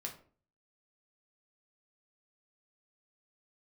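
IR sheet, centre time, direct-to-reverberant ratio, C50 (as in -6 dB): 16 ms, 0.0 dB, 10.0 dB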